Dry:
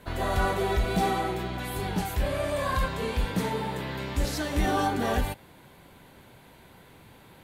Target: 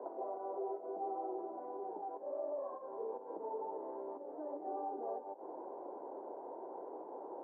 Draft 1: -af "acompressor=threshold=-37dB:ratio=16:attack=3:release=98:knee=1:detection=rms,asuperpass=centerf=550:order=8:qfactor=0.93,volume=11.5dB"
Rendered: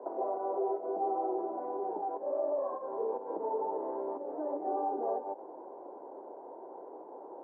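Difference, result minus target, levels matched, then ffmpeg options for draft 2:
compressor: peak gain reduction -8 dB
-af "acompressor=threshold=-45.5dB:ratio=16:attack=3:release=98:knee=1:detection=rms,asuperpass=centerf=550:order=8:qfactor=0.93,volume=11.5dB"

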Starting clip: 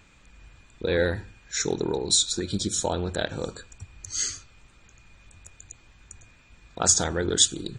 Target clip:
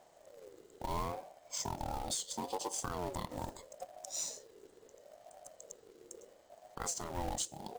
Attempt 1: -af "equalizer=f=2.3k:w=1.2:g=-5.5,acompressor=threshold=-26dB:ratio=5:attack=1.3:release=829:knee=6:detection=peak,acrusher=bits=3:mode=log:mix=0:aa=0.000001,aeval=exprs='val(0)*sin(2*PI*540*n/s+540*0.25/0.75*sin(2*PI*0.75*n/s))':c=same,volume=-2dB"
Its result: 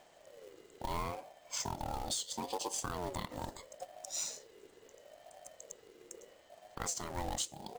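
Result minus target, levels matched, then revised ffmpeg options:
2000 Hz band +2.5 dB
-af "equalizer=f=2.3k:w=1.2:g=-17,acompressor=threshold=-26dB:ratio=5:attack=1.3:release=829:knee=6:detection=peak,acrusher=bits=3:mode=log:mix=0:aa=0.000001,aeval=exprs='val(0)*sin(2*PI*540*n/s+540*0.25/0.75*sin(2*PI*0.75*n/s))':c=same,volume=-2dB"

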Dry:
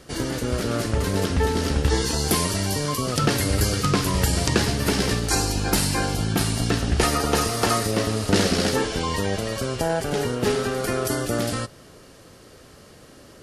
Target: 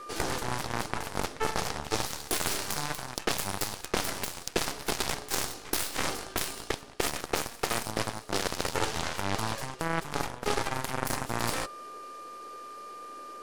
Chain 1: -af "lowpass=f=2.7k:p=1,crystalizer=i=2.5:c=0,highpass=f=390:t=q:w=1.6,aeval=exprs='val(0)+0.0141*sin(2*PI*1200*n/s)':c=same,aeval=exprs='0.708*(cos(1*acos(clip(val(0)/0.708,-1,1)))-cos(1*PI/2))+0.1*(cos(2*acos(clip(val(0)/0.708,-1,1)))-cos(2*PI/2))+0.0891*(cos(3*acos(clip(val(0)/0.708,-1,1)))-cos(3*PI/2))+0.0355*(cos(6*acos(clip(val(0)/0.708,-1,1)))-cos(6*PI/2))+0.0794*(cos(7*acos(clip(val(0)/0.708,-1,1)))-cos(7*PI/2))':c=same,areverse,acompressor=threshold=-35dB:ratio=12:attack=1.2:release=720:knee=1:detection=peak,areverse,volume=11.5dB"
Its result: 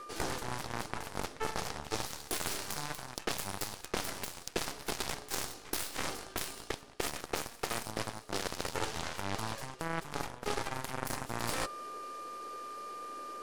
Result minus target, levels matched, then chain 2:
compressor: peak gain reduction +6 dB
-af "lowpass=f=2.7k:p=1,crystalizer=i=2.5:c=0,highpass=f=390:t=q:w=1.6,aeval=exprs='val(0)+0.0141*sin(2*PI*1200*n/s)':c=same,aeval=exprs='0.708*(cos(1*acos(clip(val(0)/0.708,-1,1)))-cos(1*PI/2))+0.1*(cos(2*acos(clip(val(0)/0.708,-1,1)))-cos(2*PI/2))+0.0891*(cos(3*acos(clip(val(0)/0.708,-1,1)))-cos(3*PI/2))+0.0355*(cos(6*acos(clip(val(0)/0.708,-1,1)))-cos(6*PI/2))+0.0794*(cos(7*acos(clip(val(0)/0.708,-1,1)))-cos(7*PI/2))':c=same,areverse,acompressor=threshold=-28.5dB:ratio=12:attack=1.2:release=720:knee=1:detection=peak,areverse,volume=11.5dB"

